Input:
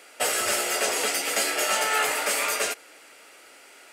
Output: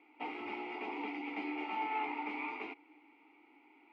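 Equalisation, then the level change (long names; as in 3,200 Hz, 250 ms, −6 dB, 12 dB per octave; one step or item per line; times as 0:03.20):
formant filter u
high-frequency loss of the air 350 metres
high-shelf EQ 6,500 Hz −6 dB
+4.5 dB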